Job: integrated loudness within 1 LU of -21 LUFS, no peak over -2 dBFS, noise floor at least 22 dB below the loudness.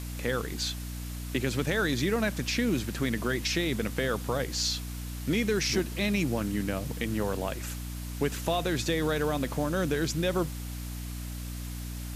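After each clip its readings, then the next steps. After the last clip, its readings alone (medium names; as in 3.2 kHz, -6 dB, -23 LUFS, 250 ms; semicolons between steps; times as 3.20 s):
hum 60 Hz; highest harmonic 300 Hz; hum level -35 dBFS; noise floor -37 dBFS; noise floor target -52 dBFS; loudness -30.0 LUFS; peak level -14.0 dBFS; loudness target -21.0 LUFS
-> de-hum 60 Hz, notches 5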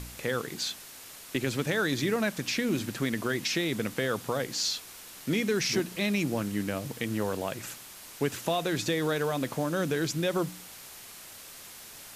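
hum not found; noise floor -47 dBFS; noise floor target -52 dBFS
-> noise reduction 6 dB, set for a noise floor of -47 dBFS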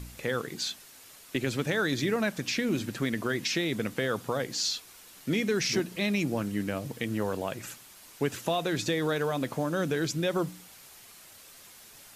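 noise floor -52 dBFS; noise floor target -53 dBFS
-> noise reduction 6 dB, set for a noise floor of -52 dBFS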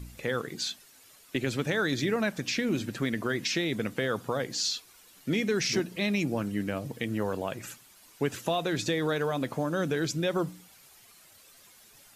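noise floor -57 dBFS; loudness -30.0 LUFS; peak level -13.5 dBFS; loudness target -21.0 LUFS
-> trim +9 dB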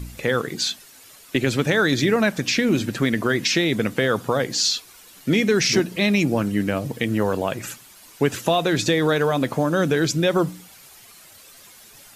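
loudness -21.0 LUFS; peak level -4.5 dBFS; noise floor -48 dBFS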